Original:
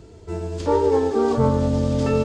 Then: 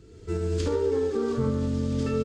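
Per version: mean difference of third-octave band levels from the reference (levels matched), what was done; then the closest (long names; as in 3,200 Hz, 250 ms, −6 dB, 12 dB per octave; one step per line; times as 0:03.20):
3.0 dB: camcorder AGC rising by 26 dB per second
flat-topped bell 770 Hz −11 dB 1 octave
single-tap delay 73 ms −9 dB
level −7.5 dB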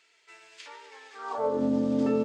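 9.0 dB: high-shelf EQ 3,800 Hz −8 dB
downward compressor 2 to 1, threshold −26 dBFS, peak gain reduction 7.5 dB
high-pass filter sweep 2,200 Hz → 250 Hz, 0:01.13–0:01.63
level −3 dB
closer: first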